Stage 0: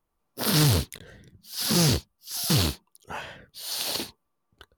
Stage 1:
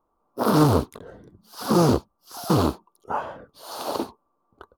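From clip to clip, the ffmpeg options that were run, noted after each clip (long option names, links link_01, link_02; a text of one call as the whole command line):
ffmpeg -i in.wav -af "firequalizer=gain_entry='entry(150,0);entry(260,9);entry(1200,12);entry(1800,-9)':delay=0.05:min_phase=1" out.wav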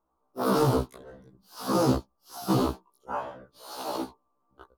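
ffmpeg -i in.wav -af "afftfilt=real='re*1.73*eq(mod(b,3),0)':imag='im*1.73*eq(mod(b,3),0)':win_size=2048:overlap=0.75,volume=-2dB" out.wav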